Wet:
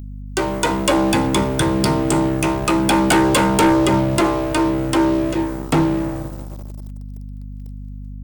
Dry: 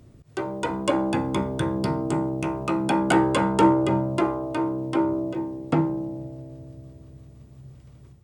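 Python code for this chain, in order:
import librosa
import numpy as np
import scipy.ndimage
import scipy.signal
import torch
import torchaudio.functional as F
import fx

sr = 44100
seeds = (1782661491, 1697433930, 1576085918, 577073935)

y = librosa.effects.preemphasis(x, coef=0.8, zi=[0.0])
y = fx.leveller(y, sr, passes=5)
y = fx.add_hum(y, sr, base_hz=50, snr_db=13)
y = y * 10.0 ** (4.0 / 20.0)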